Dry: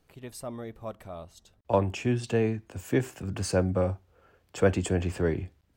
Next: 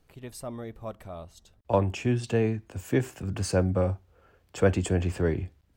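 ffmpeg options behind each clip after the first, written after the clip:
ffmpeg -i in.wav -af "lowshelf=frequency=81:gain=6" out.wav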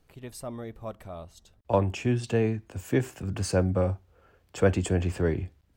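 ffmpeg -i in.wav -af anull out.wav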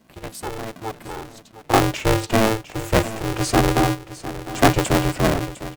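ffmpeg -i in.wav -af "aecho=1:1:705|1410|2115:0.2|0.0638|0.0204,aeval=exprs='val(0)*sgn(sin(2*PI*220*n/s))':channel_layout=same,volume=7dB" out.wav

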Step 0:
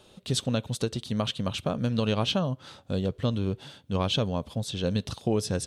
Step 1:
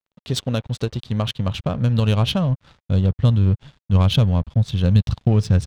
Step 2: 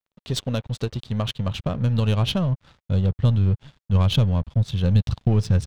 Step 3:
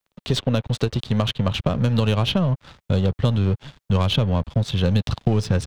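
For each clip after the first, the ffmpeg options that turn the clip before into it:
ffmpeg -i in.wav -af "aeval=exprs='sgn(val(0))*max(abs(val(0))-0.00473,0)':channel_layout=same,adynamicsmooth=sensitivity=4.5:basefreq=3600,asubboost=boost=7.5:cutoff=130,volume=5dB" out.wav
ffmpeg -i in.wav -af "aeval=exprs='if(lt(val(0),0),0.708*val(0),val(0))':channel_layout=same,volume=-1dB" out.wav
ffmpeg -i in.wav -filter_complex "[0:a]acrossover=split=230|3700[link_01][link_02][link_03];[link_01]acompressor=threshold=-31dB:ratio=4[link_04];[link_02]acompressor=threshold=-30dB:ratio=4[link_05];[link_03]acompressor=threshold=-46dB:ratio=4[link_06];[link_04][link_05][link_06]amix=inputs=3:normalize=0,volume=9dB" out.wav

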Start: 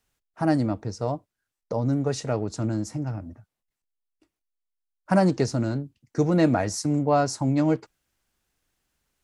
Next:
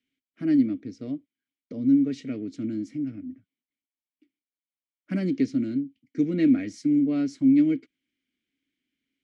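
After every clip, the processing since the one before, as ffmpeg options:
ffmpeg -i in.wav -filter_complex "[0:a]asplit=3[link_01][link_02][link_03];[link_01]bandpass=frequency=270:width_type=q:width=8,volume=0dB[link_04];[link_02]bandpass=frequency=2290:width_type=q:width=8,volume=-6dB[link_05];[link_03]bandpass=frequency=3010:width_type=q:width=8,volume=-9dB[link_06];[link_04][link_05][link_06]amix=inputs=3:normalize=0,volume=9dB" out.wav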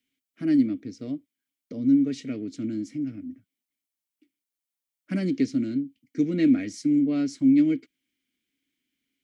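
ffmpeg -i in.wav -af "highshelf=frequency=4800:gain=9" out.wav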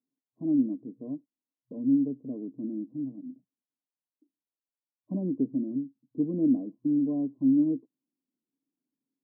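ffmpeg -i in.wav -af "afftfilt=real='re*between(b*sr/4096,120,1100)':imag='im*between(b*sr/4096,120,1100)':win_size=4096:overlap=0.75,volume=-4dB" out.wav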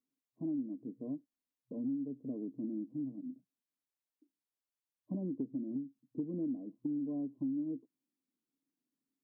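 ffmpeg -i in.wav -af "acompressor=threshold=-32dB:ratio=6,volume=-2.5dB" out.wav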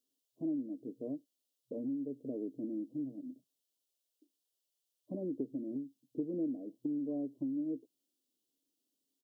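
ffmpeg -i in.wav -af "firequalizer=gain_entry='entry(130,0);entry(190,-4);entry(390,8);entry(580,9);entry(830,-1);entry(1800,-22);entry(2900,11)':delay=0.05:min_phase=1,volume=-2dB" out.wav

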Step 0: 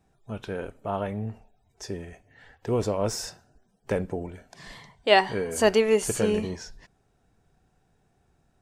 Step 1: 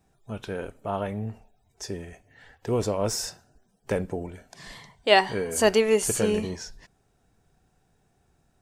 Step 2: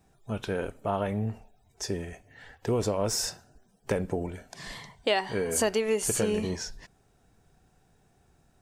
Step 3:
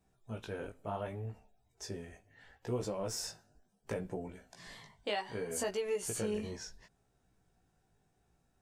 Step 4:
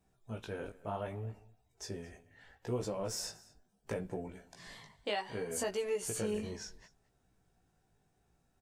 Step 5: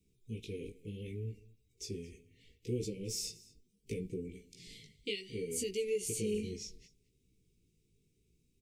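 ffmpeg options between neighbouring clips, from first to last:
ffmpeg -i in.wav -af "highshelf=frequency=5100:gain=5.5" out.wav
ffmpeg -i in.wav -af "acompressor=threshold=-26dB:ratio=5,volume=2.5dB" out.wav
ffmpeg -i in.wav -af "flanger=delay=15.5:depth=4.2:speed=0.69,volume=-7dB" out.wav
ffmpeg -i in.wav -af "aecho=1:1:221:0.0841" out.wav
ffmpeg -i in.wav -af "asuperstop=centerf=1000:order=20:qfactor=0.61,volume=1dB" out.wav

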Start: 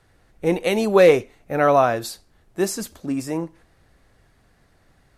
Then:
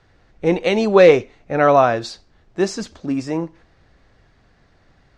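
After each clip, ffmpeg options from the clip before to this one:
ffmpeg -i in.wav -af "lowpass=frequency=6100:width=0.5412,lowpass=frequency=6100:width=1.3066,volume=3dB" out.wav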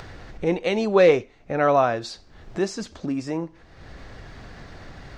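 ffmpeg -i in.wav -af "acompressor=mode=upward:threshold=-18dB:ratio=2.5,volume=-5.5dB" out.wav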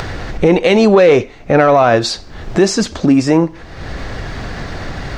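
ffmpeg -i in.wav -filter_complex "[0:a]asplit=2[link_01][link_02];[link_02]asoftclip=type=tanh:threshold=-19dB,volume=-5dB[link_03];[link_01][link_03]amix=inputs=2:normalize=0,alimiter=level_in=14dB:limit=-1dB:release=50:level=0:latency=1,volume=-1dB" out.wav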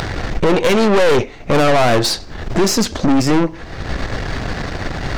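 ffmpeg -i in.wav -af "aeval=exprs='(tanh(7.08*val(0)+0.7)-tanh(0.7))/7.08':channel_layout=same,volume=6dB" out.wav

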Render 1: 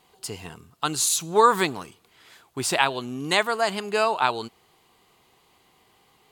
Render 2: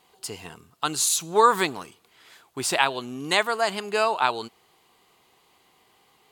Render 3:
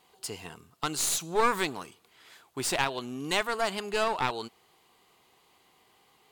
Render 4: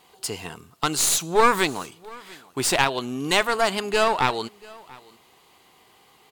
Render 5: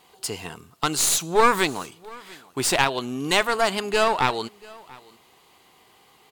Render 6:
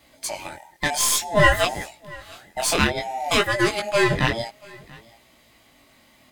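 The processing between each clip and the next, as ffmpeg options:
ffmpeg -i in.wav -af "lowshelf=frequency=180:gain=-7" out.wav
ffmpeg -i in.wav -filter_complex "[0:a]asplit=2[link_01][link_02];[link_02]alimiter=limit=-14dB:level=0:latency=1:release=211,volume=-2dB[link_03];[link_01][link_03]amix=inputs=2:normalize=0,aeval=exprs='clip(val(0),-1,0.0794)':channel_layout=same,volume=-7.5dB" out.wav
ffmpeg -i in.wav -af "aecho=1:1:687:0.0668,volume=7.5dB" out.wav
ffmpeg -i in.wav -af anull out.wav
ffmpeg -i in.wav -af "afftfilt=real='real(if(between(b,1,1008),(2*floor((b-1)/48)+1)*48-b,b),0)':imag='imag(if(between(b,1,1008),(2*floor((b-1)/48)+1)*48-b,b),0)*if(between(b,1,1008),-1,1)':win_size=2048:overlap=0.75,flanger=delay=16.5:depth=7.5:speed=0.56,volume=3.5dB" out.wav

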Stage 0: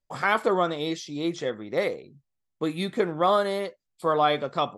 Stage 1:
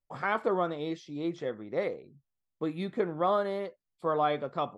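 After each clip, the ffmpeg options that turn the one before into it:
ffmpeg -i in.wav -af "lowpass=frequency=1600:poles=1,volume=-4.5dB" out.wav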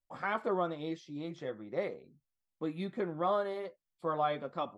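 ffmpeg -i in.wav -af "bandreject=frequency=440:width=14,flanger=delay=3:depth=4.7:regen=-52:speed=0.42:shape=triangular" out.wav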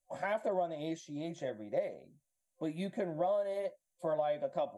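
ffmpeg -i in.wav -af "superequalizer=7b=0.708:8b=3.16:10b=0.316:15b=3.55:16b=3.55,acompressor=threshold=-30dB:ratio=6" out.wav

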